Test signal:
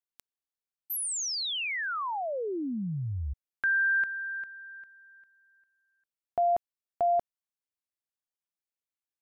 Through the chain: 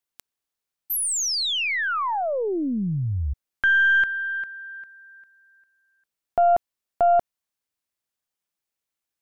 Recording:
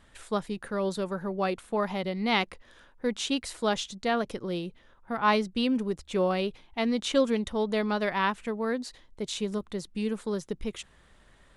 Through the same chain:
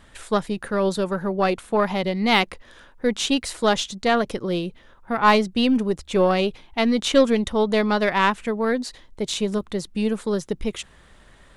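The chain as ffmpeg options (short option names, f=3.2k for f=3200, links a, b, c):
-af "aeval=exprs='0.282*(cos(1*acos(clip(val(0)/0.282,-1,1)))-cos(1*PI/2))+0.0112*(cos(6*acos(clip(val(0)/0.282,-1,1)))-cos(6*PI/2))':c=same,volume=7.5dB"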